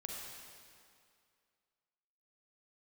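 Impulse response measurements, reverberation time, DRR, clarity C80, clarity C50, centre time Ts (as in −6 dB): 2.3 s, −1.5 dB, 1.0 dB, −0.5 dB, 115 ms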